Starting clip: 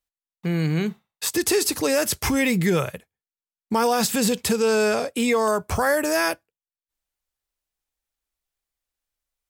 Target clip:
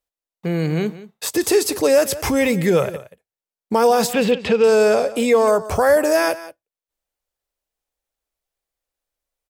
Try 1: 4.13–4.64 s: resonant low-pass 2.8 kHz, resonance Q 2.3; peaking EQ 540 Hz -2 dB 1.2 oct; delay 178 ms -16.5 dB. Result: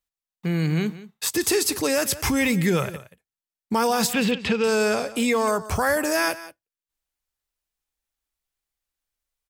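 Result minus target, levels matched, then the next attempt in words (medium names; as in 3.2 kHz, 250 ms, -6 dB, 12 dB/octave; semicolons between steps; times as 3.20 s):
500 Hz band -4.0 dB
4.13–4.64 s: resonant low-pass 2.8 kHz, resonance Q 2.3; peaking EQ 540 Hz +8.5 dB 1.2 oct; delay 178 ms -16.5 dB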